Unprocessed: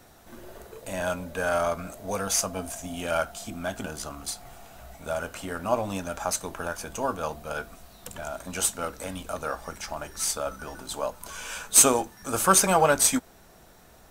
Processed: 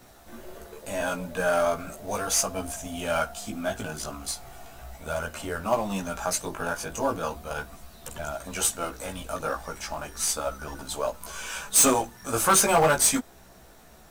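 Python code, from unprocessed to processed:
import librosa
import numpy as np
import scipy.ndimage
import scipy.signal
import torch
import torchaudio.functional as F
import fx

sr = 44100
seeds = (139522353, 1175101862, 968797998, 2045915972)

p1 = fx.quant_companded(x, sr, bits=4)
p2 = x + F.gain(torch.from_numpy(p1), -11.0).numpy()
p3 = fx.chorus_voices(p2, sr, voices=2, hz=0.37, base_ms=16, depth_ms=3.0, mix_pct=45)
p4 = np.clip(10.0 ** (16.0 / 20.0) * p3, -1.0, 1.0) / 10.0 ** (16.0 / 20.0)
y = F.gain(torch.from_numpy(p4), 2.0).numpy()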